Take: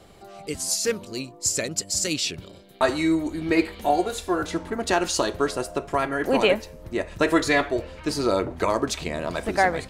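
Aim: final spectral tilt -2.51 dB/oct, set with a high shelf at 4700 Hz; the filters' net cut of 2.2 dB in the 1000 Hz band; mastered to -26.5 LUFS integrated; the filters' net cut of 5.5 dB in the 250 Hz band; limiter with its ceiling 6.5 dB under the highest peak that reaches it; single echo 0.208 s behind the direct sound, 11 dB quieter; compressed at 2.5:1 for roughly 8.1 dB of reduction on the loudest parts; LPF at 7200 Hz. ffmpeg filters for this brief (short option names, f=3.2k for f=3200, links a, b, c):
-af "lowpass=7.2k,equalizer=f=250:t=o:g=-8,equalizer=f=1k:t=o:g=-3,highshelf=f=4.7k:g=9,acompressor=threshold=-29dB:ratio=2.5,alimiter=limit=-20.5dB:level=0:latency=1,aecho=1:1:208:0.282,volume=5.5dB"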